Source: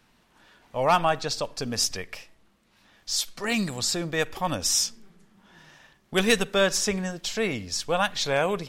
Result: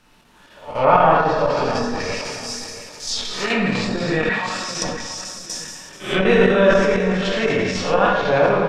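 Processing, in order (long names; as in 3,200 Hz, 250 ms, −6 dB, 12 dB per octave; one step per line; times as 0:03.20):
peak hold with a rise ahead of every peak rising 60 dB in 0.45 s
dense smooth reverb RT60 1.6 s, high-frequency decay 0.95×, DRR −5 dB
square-wave tremolo 4 Hz, depth 60%, duty 85%
0:04.29–0:04.82: resonant band-pass 1,800 Hz, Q 1.4
repeating echo 678 ms, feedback 25%, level −13 dB
treble cut that deepens with the level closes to 1,600 Hz, closed at −15.5 dBFS
level that may fall only so fast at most 40 dB per second
level +2 dB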